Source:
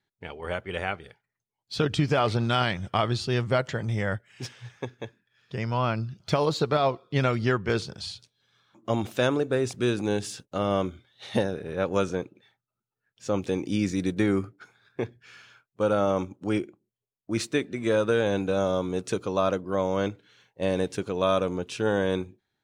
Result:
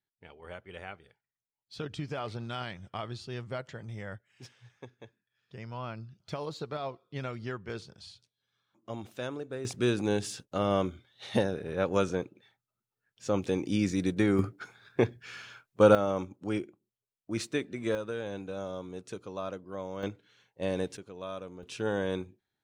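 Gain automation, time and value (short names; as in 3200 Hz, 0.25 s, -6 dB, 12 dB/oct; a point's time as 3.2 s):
-13 dB
from 9.65 s -2 dB
from 14.39 s +5 dB
from 15.95 s -5.5 dB
from 17.95 s -12.5 dB
from 20.03 s -5.5 dB
from 20.97 s -16 dB
from 21.63 s -6 dB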